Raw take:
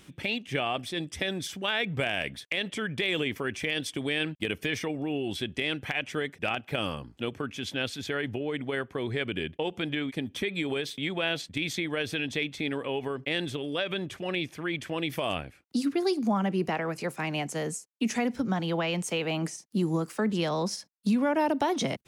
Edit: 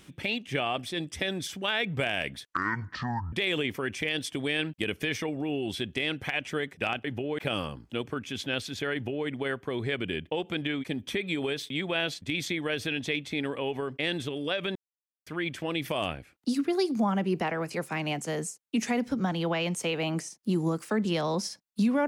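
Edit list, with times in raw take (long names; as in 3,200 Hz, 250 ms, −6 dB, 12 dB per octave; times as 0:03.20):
0:02.47–0:02.94: play speed 55%
0:08.21–0:08.55: duplicate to 0:06.66
0:14.03–0:14.54: silence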